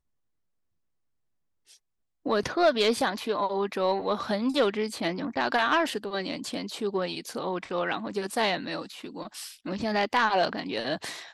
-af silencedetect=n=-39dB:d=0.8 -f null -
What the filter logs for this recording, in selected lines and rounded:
silence_start: 0.00
silence_end: 2.26 | silence_duration: 2.26